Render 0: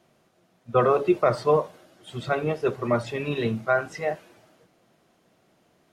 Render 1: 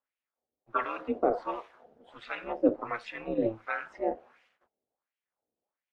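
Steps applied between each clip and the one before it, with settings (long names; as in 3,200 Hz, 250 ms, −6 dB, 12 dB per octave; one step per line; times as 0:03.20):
noise gate −57 dBFS, range −22 dB
LFO wah 1.4 Hz 410–2,500 Hz, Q 2.7
ring modulation 110 Hz
level +5 dB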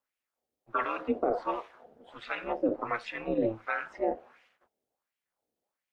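brickwall limiter −20 dBFS, peak gain reduction 9.5 dB
level +2.5 dB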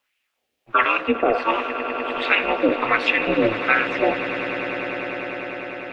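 parametric band 2,700 Hz +14 dB 1.3 octaves
on a send: echo that builds up and dies away 100 ms, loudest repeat 8, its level −15.5 dB
on the sum: level +8 dB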